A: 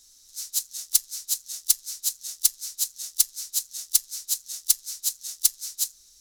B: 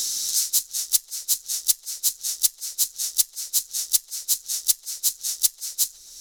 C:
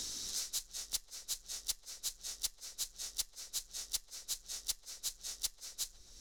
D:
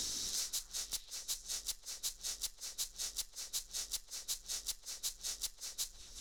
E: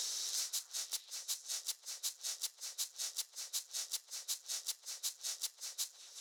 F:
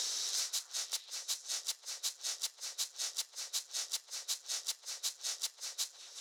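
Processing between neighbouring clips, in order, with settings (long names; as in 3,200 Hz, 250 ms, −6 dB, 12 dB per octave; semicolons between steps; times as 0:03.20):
feedback echo with a band-pass in the loop 131 ms, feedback 73%, band-pass 480 Hz, level −13 dB; multiband upward and downward compressor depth 100%; level +2 dB
low-pass filter 3,200 Hz 6 dB per octave; spectral tilt −2 dB per octave; level −4 dB
brickwall limiter −29 dBFS, peak gain reduction 7.5 dB; echo through a band-pass that steps 372 ms, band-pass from 1,100 Hz, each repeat 1.4 octaves, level −7.5 dB; level +2.5 dB
high-pass filter 500 Hz 24 dB per octave
high-shelf EQ 8,900 Hz −10 dB; level +5.5 dB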